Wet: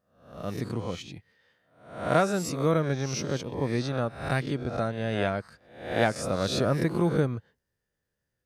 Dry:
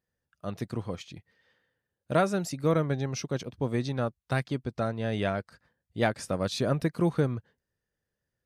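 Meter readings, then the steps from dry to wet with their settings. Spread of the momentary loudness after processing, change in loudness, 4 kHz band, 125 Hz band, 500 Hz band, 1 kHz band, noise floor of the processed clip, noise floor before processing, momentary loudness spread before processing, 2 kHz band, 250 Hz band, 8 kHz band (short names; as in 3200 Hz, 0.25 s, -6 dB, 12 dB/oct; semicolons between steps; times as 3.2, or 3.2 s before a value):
11 LU, +1.5 dB, +3.0 dB, +1.0 dB, +2.0 dB, +2.5 dB, -83 dBFS, under -85 dBFS, 12 LU, +3.0 dB, +1.5 dB, +3.5 dB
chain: spectral swells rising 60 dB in 0.58 s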